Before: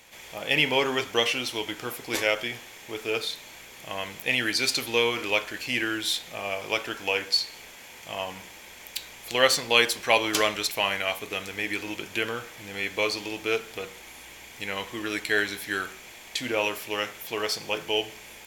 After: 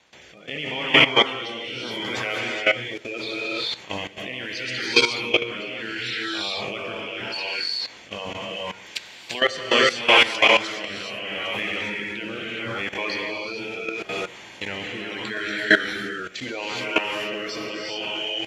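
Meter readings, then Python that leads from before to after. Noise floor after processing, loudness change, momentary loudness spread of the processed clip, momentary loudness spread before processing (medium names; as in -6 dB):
-44 dBFS, +3.5 dB, 15 LU, 16 LU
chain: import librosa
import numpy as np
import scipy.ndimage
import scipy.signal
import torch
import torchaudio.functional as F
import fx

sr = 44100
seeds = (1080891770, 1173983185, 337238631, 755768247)

p1 = fx.spec_quant(x, sr, step_db=30)
p2 = scipy.signal.sosfilt(scipy.signal.butter(2, 53.0, 'highpass', fs=sr, output='sos'), p1)
p3 = fx.rev_gated(p2, sr, seeds[0], gate_ms=450, shape='rising', drr_db=-3.5)
p4 = fx.rider(p3, sr, range_db=5, speed_s=2.0)
p5 = p3 + (p4 * 10.0 ** (-1.0 / 20.0))
p6 = scipy.signal.sosfilt(scipy.signal.butter(2, 4800.0, 'lowpass', fs=sr, output='sos'), p5)
p7 = fx.low_shelf(p6, sr, hz=170.0, db=-4.0)
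p8 = fx.level_steps(p7, sr, step_db=15)
p9 = fx.rotary(p8, sr, hz=0.75)
y = p9 * 10.0 ** (3.0 / 20.0)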